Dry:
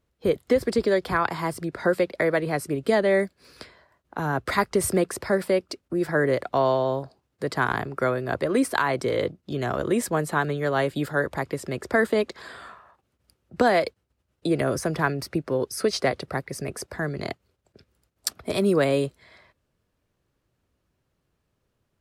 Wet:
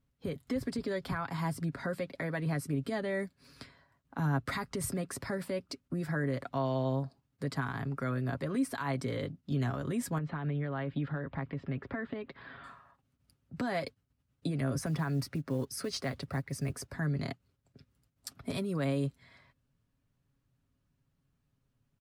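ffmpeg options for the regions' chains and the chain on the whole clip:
ffmpeg -i in.wav -filter_complex "[0:a]asettb=1/sr,asplit=3[link_01][link_02][link_03];[link_01]atrim=end=10.184[link_04];[link_02]atrim=start=10.18:end=12.64,asetpts=PTS-STARTPTS,afade=type=in:duration=0.004:curve=qsin,afade=type=out:start_time=2.456:duration=0.004:curve=qsin,lowpass=frequency=3200:width=0.5412,lowpass=frequency=3200:width=1.3066,acompressor=threshold=-27dB:ratio=4:attack=3.2:release=140:knee=1:detection=peak[link_05];[link_03]atrim=start=12.636[link_06];[link_04][link_05]acrossfade=duration=0.004:curve1=hsin:curve2=qsin[link_07];[link_07][link_06]acrossfade=duration=0.004:curve1=qsin:curve2=hsin,asettb=1/sr,asplit=3[link_08][link_09][link_10];[link_08]atrim=end=14.864[link_11];[link_09]atrim=start=14.86:end=16.92,asetpts=PTS-STARTPTS,afade=type=in:duration=0.004:curve=qsin,afade=type=out:start_time=2.056:duration=0.004:curve=qsin,highpass=frequency=64:width=0.5412,highpass=frequency=64:width=1.3066,asubboost=boost=5:cutoff=85,acrusher=bits=7:mode=log:mix=0:aa=0.000001[link_12];[link_10]atrim=start=16.916[link_13];[link_11][link_12]acrossfade=duration=0.004:curve1=hsin:curve2=qsin[link_14];[link_14][link_13]acrossfade=duration=0.004:curve1=qsin:curve2=hsin,firequalizer=gain_entry='entry(250,0);entry(360,-11);entry(1100,-7)':delay=0.05:min_phase=1,alimiter=level_in=0.5dB:limit=-24dB:level=0:latency=1:release=109,volume=-0.5dB,aecho=1:1:7.3:0.46,volume=-1dB" out.wav

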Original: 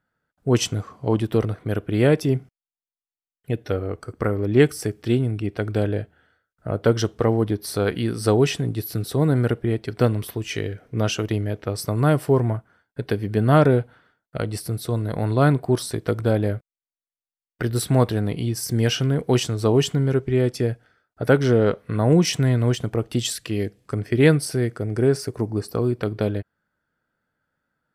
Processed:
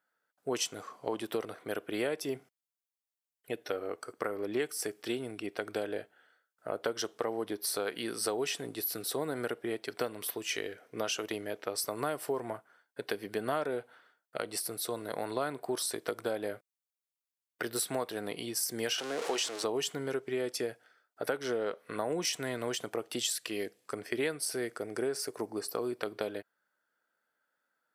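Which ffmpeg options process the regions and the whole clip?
ffmpeg -i in.wav -filter_complex "[0:a]asettb=1/sr,asplit=3[link_01][link_02][link_03];[link_01]atrim=end=18.984[link_04];[link_02]atrim=start=18.98:end=19.64,asetpts=PTS-STARTPTS,afade=type=in:duration=0.004:curve=qsin,afade=type=out:start_time=0.656:duration=0.004:curve=qsin,aeval=exprs='val(0)+0.5*0.0631*sgn(val(0))':channel_layout=same,highpass=320,lowpass=7400[link_05];[link_03]atrim=start=19.636[link_06];[link_04][link_05]acrossfade=duration=0.004:curve1=hsin:curve2=qsin[link_07];[link_07][link_06]acrossfade=duration=0.004:curve1=qsin:curve2=hsin,highpass=450,highshelf=frequency=5900:gain=6.5,acompressor=threshold=-26dB:ratio=5,volume=-3.5dB" out.wav

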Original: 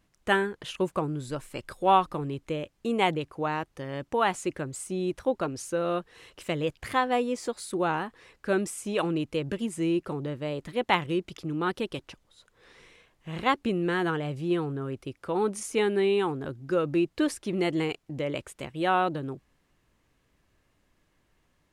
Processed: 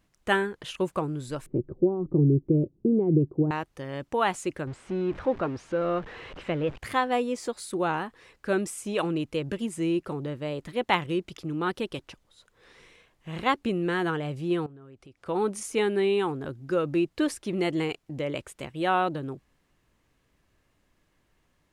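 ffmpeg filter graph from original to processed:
ffmpeg -i in.wav -filter_complex "[0:a]asettb=1/sr,asplit=3[link_01][link_02][link_03];[link_01]atrim=end=1.464[link_04];[link_02]atrim=start=1.46:end=3.51,asetpts=PTS-STARTPTS,afade=type=in:duration=0.004:curve=qsin,afade=type=out:start_time=2.046:duration=0.004:curve=qsin,acompressor=threshold=-26dB:ratio=12:attack=3.2:release=140:knee=1:detection=peak,lowpass=frequency=360:width_type=q:width=4.5,equalizer=frequency=140:width=1.1:gain=13[link_05];[link_03]atrim=start=3.506[link_06];[link_04][link_05]acrossfade=duration=0.004:curve1=hsin:curve2=qsin[link_07];[link_07][link_06]acrossfade=duration=0.004:curve1=qsin:curve2=hsin,asettb=1/sr,asplit=3[link_08][link_09][link_10];[link_08]atrim=end=4.674[link_11];[link_09]atrim=start=4.67:end=6.78,asetpts=PTS-STARTPTS,afade=type=in:duration=0.004:curve=qsin,afade=type=out:start_time=2.106:duration=0.004:curve=qsin,aeval=exprs='val(0)+0.5*0.0158*sgn(val(0))':channel_layout=same,lowpass=2300[link_12];[link_10]atrim=start=6.776[link_13];[link_11][link_12]acrossfade=duration=0.004:curve1=hsin:curve2=qsin[link_14];[link_14][link_13]acrossfade=duration=0.004:curve1=qsin:curve2=hsin,asettb=1/sr,asplit=3[link_15][link_16][link_17];[link_15]atrim=end=14.664[link_18];[link_16]atrim=start=14.66:end=15.26,asetpts=PTS-STARTPTS,afade=type=in:duration=0.004:curve=qsin,afade=type=out:start_time=0.596:duration=0.004:curve=qsin,equalizer=frequency=730:width=5.3:gain=3.5,acompressor=threshold=-49dB:ratio=4:attack=3.2:release=140:knee=1:detection=peak,lowpass=8700[link_19];[link_17]atrim=start=15.256[link_20];[link_18][link_19]acrossfade=duration=0.004:curve1=hsin:curve2=qsin[link_21];[link_21][link_20]acrossfade=duration=0.004:curve1=qsin:curve2=hsin" out.wav

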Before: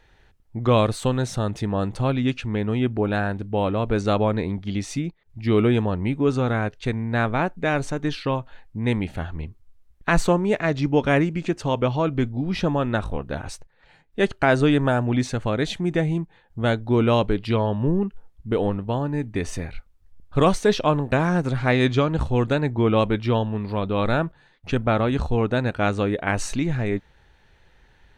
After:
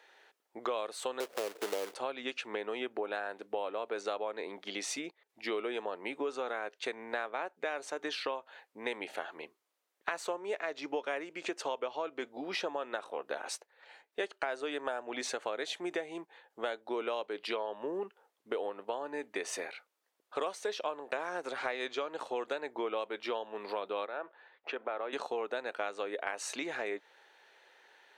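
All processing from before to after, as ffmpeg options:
ffmpeg -i in.wav -filter_complex "[0:a]asettb=1/sr,asplit=3[link_01][link_02][link_03];[link_01]atrim=end=1.204[link_04];[link_02]atrim=start=1.2:end=1.94,asetpts=PTS-STARTPTS,afade=type=in:duration=0.004:curve=qsin,afade=type=out:start_time=0.736:duration=0.004:curve=qsin,lowpass=frequency=460:width_type=q:width=2.5,acrusher=bits=2:mode=log:mix=0:aa=0.000001[link_05];[link_03]atrim=start=1.936[link_06];[link_04][link_05]acrossfade=duration=0.004:curve1=hsin:curve2=qsin[link_07];[link_07][link_06]acrossfade=duration=0.004:curve1=qsin:curve2=hsin,asettb=1/sr,asplit=3[link_08][link_09][link_10];[link_08]atrim=end=24.054[link_11];[link_09]atrim=start=24.05:end=25.13,asetpts=PTS-STARTPTS,afade=type=in:duration=0.004:curve=qsin,afade=type=out:start_time=1.076:duration=0.004:curve=qsin,acompressor=threshold=-24dB:ratio=4:attack=3.2:release=140:knee=1:detection=peak,highpass=270,lowpass=2500[link_12];[link_10]atrim=start=25.126[link_13];[link_11][link_12]acrossfade=duration=0.004:curve1=hsin:curve2=qsin[link_14];[link_14][link_13]acrossfade=duration=0.004:curve1=qsin:curve2=hsin,highpass=frequency=420:width=0.5412,highpass=frequency=420:width=1.3066,acompressor=threshold=-33dB:ratio=6" out.wav

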